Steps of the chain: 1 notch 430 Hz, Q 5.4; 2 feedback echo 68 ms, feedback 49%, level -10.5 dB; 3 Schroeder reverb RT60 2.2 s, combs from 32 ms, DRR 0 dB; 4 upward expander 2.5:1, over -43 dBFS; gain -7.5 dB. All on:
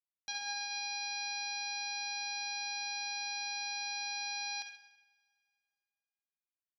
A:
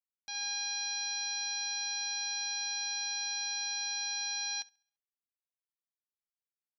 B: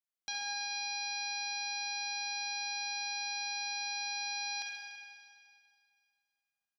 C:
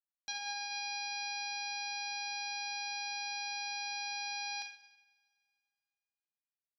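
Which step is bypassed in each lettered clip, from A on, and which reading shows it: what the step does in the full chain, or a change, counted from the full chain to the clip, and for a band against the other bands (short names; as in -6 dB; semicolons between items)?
3, loudness change +3.5 LU; 4, loudness change +1.0 LU; 2, loudness change -1.0 LU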